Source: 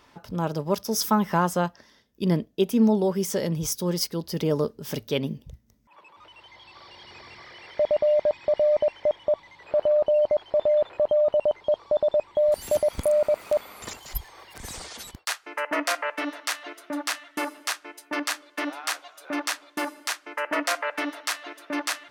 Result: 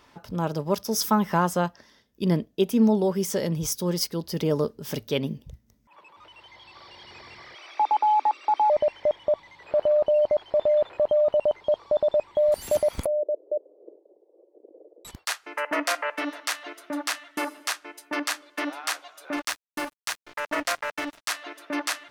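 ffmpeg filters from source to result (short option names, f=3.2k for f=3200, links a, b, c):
-filter_complex "[0:a]asettb=1/sr,asplit=3[a][b][c];[a]atrim=end=7.554[d];[b]atrim=start=7.55:end=8.7,asetpts=PTS-STARTPTS,afade=t=in:d=0.004:c=qsin,afade=t=out:st=1.146:d=0.004:c=qsin,afreqshift=250[e];[c]atrim=start=8.696[f];[d][e]acrossfade=d=0.004:c1=hsin:c2=qsin[g];[g][f]acrossfade=d=0.004:c1=qsin:c2=hsin,asettb=1/sr,asplit=3[h][i][j];[h]atrim=end=13.064[k];[i]atrim=start=13.06:end=15.05,asetpts=PTS-STARTPTS,afade=t=in:d=0.004:c=qsin,afade=t=out:st=1.986:d=0.004:c=qsin,asuperpass=centerf=430:order=8:qfactor=1.6[l];[j]atrim=start=15.046[m];[k][l]acrossfade=d=0.004:c1=hsin:c2=qsin[n];[n][m]acrossfade=d=0.004:c1=qsin:c2=hsin,asettb=1/sr,asplit=3[o][p][q];[o]atrim=end=19.364[r];[p]atrim=start=19.36:end=21.3,asetpts=PTS-STARTPTS,afade=t=in:d=0.004:c=qsin,afade=t=out:st=1.936:d=0.004:c=qsin,aeval=exprs='sgn(val(0))*max(abs(val(0))-0.0133,0)':c=same[s];[q]atrim=start=21.296[t];[r][s]acrossfade=d=0.004:c1=hsin:c2=qsin[u];[u][t]acrossfade=d=0.004:c1=qsin:c2=hsin"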